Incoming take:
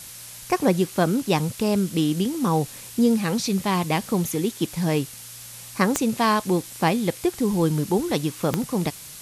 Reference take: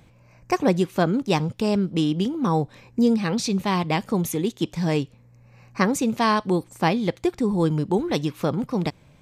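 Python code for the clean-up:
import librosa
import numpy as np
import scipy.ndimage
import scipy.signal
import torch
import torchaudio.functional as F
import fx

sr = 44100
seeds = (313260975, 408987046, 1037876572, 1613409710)

y = fx.fix_declick_ar(x, sr, threshold=10.0)
y = fx.noise_reduce(y, sr, print_start_s=5.07, print_end_s=5.57, reduce_db=12.0)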